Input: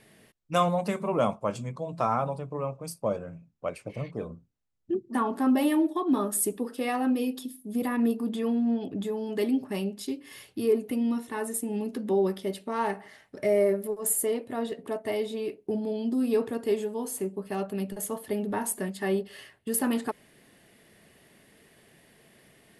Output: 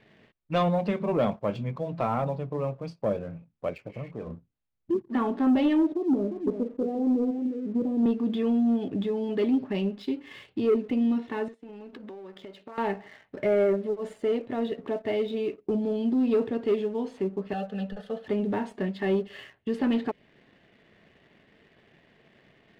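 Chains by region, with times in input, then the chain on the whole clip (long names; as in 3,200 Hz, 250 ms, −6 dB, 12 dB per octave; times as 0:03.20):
0:03.80–0:04.27: parametric band 3,700 Hz −12 dB 0.21 octaves + downward compressor 1.5 to 1, threshold −47 dBFS
0:05.92–0:08.06: Chebyshev low-pass filter 550 Hz, order 3 + single-tap delay 352 ms −8.5 dB
0:11.48–0:12.78: high-pass filter 420 Hz 6 dB per octave + downward compressor 20 to 1, threshold −42 dBFS
0:17.53–0:18.25: phaser with its sweep stopped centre 1,500 Hz, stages 8 + comb filter 4 ms, depth 69%
whole clip: low-pass filter 3,600 Hz 24 dB per octave; dynamic equaliser 1,200 Hz, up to −7 dB, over −44 dBFS, Q 1; leveller curve on the samples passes 1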